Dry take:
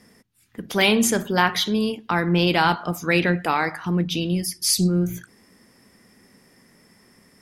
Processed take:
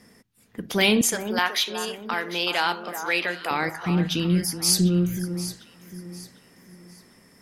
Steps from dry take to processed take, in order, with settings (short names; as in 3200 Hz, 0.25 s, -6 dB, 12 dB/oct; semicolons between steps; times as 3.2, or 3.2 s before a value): 1.01–3.51 HPF 590 Hz 12 dB/oct; dynamic EQ 1000 Hz, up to -5 dB, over -33 dBFS, Q 0.74; echo with dull and thin repeats by turns 0.375 s, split 1500 Hz, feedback 57%, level -9 dB